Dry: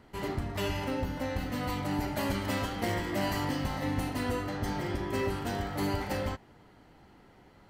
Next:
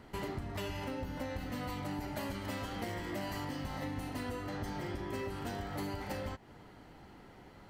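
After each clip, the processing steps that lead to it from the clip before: compressor 6:1, threshold -39 dBFS, peak gain reduction 12.5 dB; gain +2.5 dB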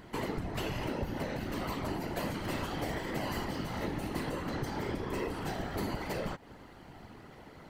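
whisperiser; gain +3.5 dB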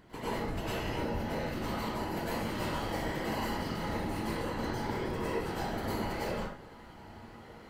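reverb RT60 0.55 s, pre-delay 93 ms, DRR -8.5 dB; gain -7.5 dB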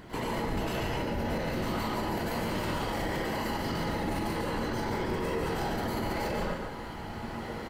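vocal rider within 4 dB; limiter -33 dBFS, peak gain reduction 11 dB; echo 0.143 s -6 dB; gain +8.5 dB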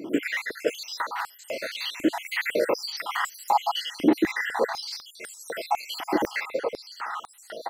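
random spectral dropouts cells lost 64%; stepped high-pass 4 Hz 300–7600 Hz; gain +7.5 dB

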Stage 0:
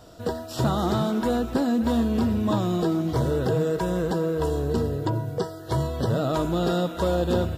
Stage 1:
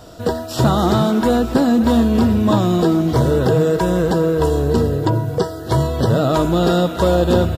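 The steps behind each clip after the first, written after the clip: echo 0.922 s -19 dB; gain +8.5 dB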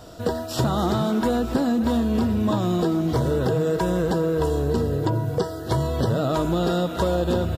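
compressor, threshold -15 dBFS, peak gain reduction 6 dB; gain -3 dB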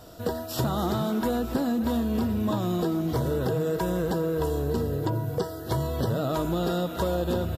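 bell 13000 Hz +11 dB 0.39 oct; gain -4.5 dB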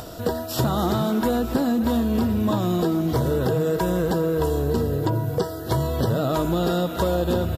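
upward compressor, threshold -35 dBFS; gain +4.5 dB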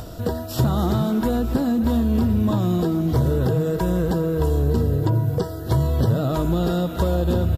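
low shelf 180 Hz +11.5 dB; gain -3 dB

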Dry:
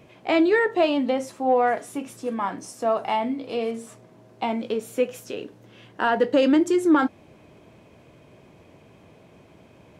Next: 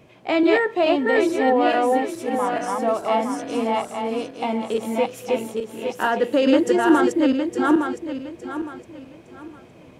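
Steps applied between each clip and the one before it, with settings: regenerating reverse delay 0.431 s, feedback 53%, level -0.5 dB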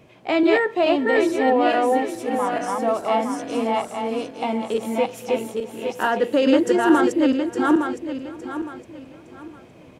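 echo 0.654 s -23 dB

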